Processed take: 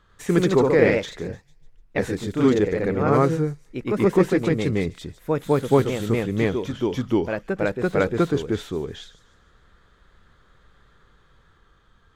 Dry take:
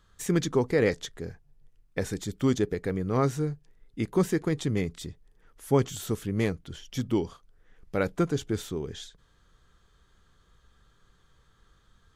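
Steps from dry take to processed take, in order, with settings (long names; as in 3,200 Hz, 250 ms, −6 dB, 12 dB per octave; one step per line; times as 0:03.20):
on a send: delay with a high-pass on its return 149 ms, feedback 41%, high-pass 5,400 Hz, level −10 dB
on the sum: delay with pitch and tempo change per echo 98 ms, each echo +1 semitone, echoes 2
bass and treble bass −4 dB, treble −12 dB
level +6.5 dB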